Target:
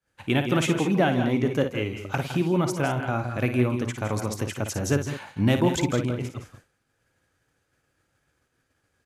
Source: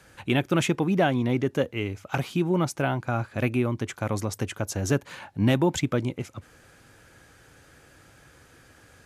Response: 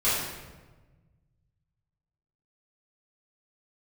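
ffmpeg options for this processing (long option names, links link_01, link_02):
-af "aecho=1:1:56|160|168|201:0.355|0.266|0.224|0.224,agate=range=-33dB:threshold=-40dB:ratio=3:detection=peak"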